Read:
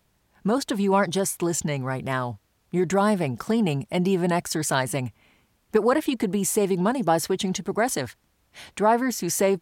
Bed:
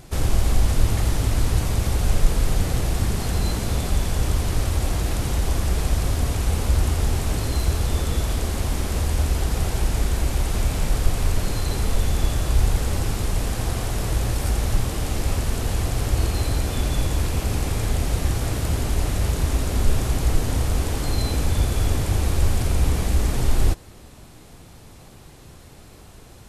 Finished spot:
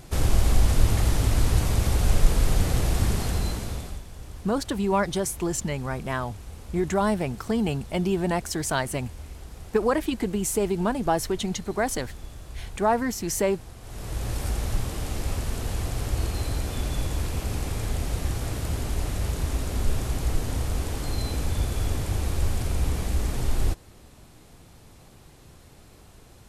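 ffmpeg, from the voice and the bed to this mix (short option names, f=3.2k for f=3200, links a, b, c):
-filter_complex "[0:a]adelay=4000,volume=-2.5dB[a];[1:a]volume=12.5dB,afade=t=out:st=3.11:d=0.92:silence=0.125893,afade=t=in:st=13.81:d=0.54:silence=0.211349[b];[a][b]amix=inputs=2:normalize=0"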